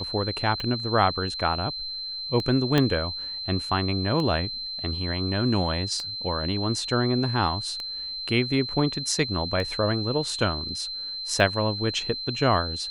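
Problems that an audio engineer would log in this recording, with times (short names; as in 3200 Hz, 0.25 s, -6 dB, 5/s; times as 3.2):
tick 33 1/3 rpm -18 dBFS
tone 4100 Hz -31 dBFS
2.78 pop -8 dBFS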